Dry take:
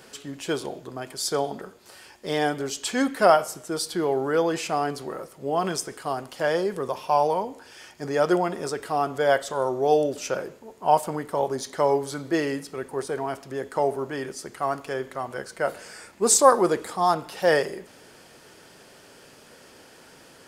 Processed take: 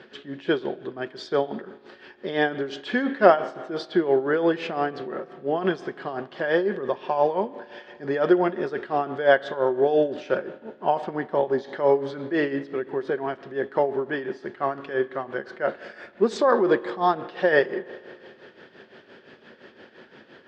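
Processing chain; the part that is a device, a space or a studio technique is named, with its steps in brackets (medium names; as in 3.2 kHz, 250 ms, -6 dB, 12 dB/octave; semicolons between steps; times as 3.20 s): combo amplifier with spring reverb and tremolo (spring tank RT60 2.4 s, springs 36 ms, chirp 50 ms, DRR 16 dB; tremolo 5.8 Hz, depth 69%; cabinet simulation 79–3900 Hz, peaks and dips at 220 Hz +8 dB, 370 Hz +9 dB, 560 Hz +4 dB, 1.7 kHz +9 dB, 3.4 kHz +4 dB)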